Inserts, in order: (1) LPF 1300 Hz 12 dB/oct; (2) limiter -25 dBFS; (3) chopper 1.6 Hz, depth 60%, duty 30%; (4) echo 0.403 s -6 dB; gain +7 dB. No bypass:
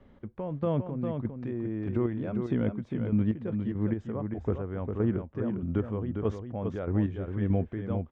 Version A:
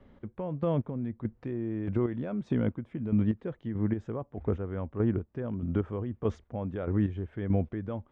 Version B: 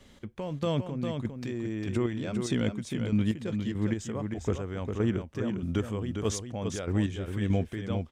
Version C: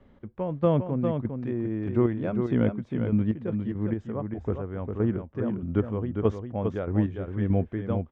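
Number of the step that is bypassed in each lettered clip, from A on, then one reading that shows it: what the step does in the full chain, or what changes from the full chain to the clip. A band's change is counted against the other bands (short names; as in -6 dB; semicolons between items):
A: 4, momentary loudness spread change +1 LU; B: 1, 2 kHz band +6.5 dB; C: 2, mean gain reduction 2.0 dB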